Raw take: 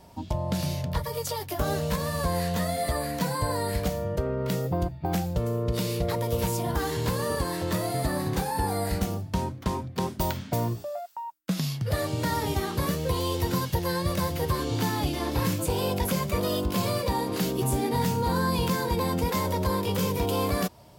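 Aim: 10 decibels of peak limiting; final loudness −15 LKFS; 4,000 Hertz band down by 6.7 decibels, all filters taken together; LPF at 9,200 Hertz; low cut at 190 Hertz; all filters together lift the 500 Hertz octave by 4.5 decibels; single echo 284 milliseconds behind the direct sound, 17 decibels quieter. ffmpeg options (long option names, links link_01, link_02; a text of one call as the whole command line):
ffmpeg -i in.wav -af "highpass=190,lowpass=9200,equalizer=frequency=500:width_type=o:gain=5.5,equalizer=frequency=4000:width_type=o:gain=-8.5,alimiter=limit=-23.5dB:level=0:latency=1,aecho=1:1:284:0.141,volume=17dB" out.wav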